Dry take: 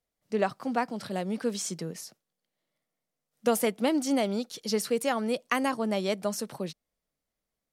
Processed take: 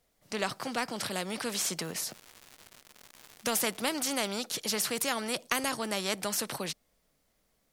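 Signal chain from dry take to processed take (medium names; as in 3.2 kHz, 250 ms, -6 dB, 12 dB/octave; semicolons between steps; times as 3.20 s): 1.77–3.81 s: crackle 230 per s -49 dBFS; spectrum-flattening compressor 2:1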